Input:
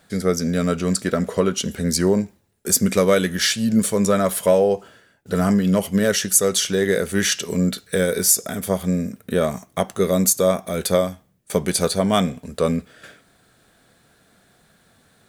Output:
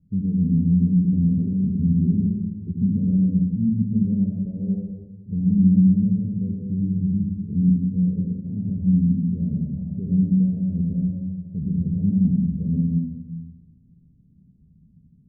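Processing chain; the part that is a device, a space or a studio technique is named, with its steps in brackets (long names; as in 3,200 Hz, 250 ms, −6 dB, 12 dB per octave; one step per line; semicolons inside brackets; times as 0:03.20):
0:06.74–0:07.45: flat-topped bell 530 Hz −13 dB 1.3 octaves
club heard from the street (brickwall limiter −13.5 dBFS, peak gain reduction 11 dB; low-pass filter 190 Hz 24 dB per octave; convolution reverb RT60 1.3 s, pre-delay 69 ms, DRR −1.5 dB)
level +5 dB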